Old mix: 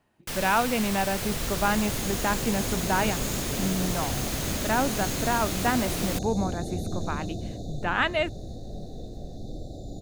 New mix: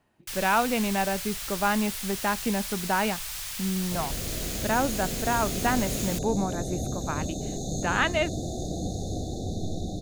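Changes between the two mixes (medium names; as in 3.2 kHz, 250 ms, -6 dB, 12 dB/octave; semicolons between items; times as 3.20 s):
first sound: add amplifier tone stack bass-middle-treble 10-0-10; second sound: entry +2.70 s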